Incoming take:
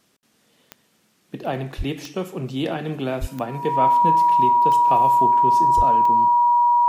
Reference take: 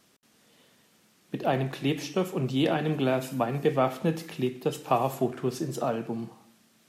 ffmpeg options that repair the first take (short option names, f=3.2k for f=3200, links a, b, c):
-filter_complex "[0:a]adeclick=t=4,bandreject=f=960:w=30,asplit=3[a][b][c];[a]afade=t=out:st=1.77:d=0.02[d];[b]highpass=f=140:w=0.5412,highpass=f=140:w=1.3066,afade=t=in:st=1.77:d=0.02,afade=t=out:st=1.89:d=0.02[e];[c]afade=t=in:st=1.89:d=0.02[f];[d][e][f]amix=inputs=3:normalize=0,asplit=3[g][h][i];[g]afade=t=out:st=3.2:d=0.02[j];[h]highpass=f=140:w=0.5412,highpass=f=140:w=1.3066,afade=t=in:st=3.2:d=0.02,afade=t=out:st=3.32:d=0.02[k];[i]afade=t=in:st=3.32:d=0.02[l];[j][k][l]amix=inputs=3:normalize=0,asplit=3[m][n][o];[m]afade=t=out:st=5.76:d=0.02[p];[n]highpass=f=140:w=0.5412,highpass=f=140:w=1.3066,afade=t=in:st=5.76:d=0.02,afade=t=out:st=5.88:d=0.02[q];[o]afade=t=in:st=5.88:d=0.02[r];[p][q][r]amix=inputs=3:normalize=0"